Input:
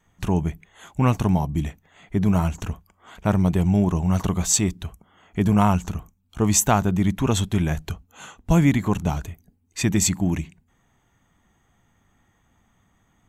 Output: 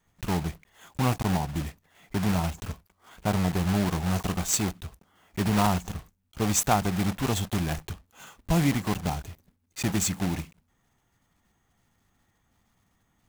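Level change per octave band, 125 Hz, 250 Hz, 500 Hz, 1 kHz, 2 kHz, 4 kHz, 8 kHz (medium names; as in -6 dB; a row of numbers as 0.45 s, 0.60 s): -6.5 dB, -6.5 dB, -5.0 dB, -3.0 dB, -2.0 dB, -2.0 dB, -6.0 dB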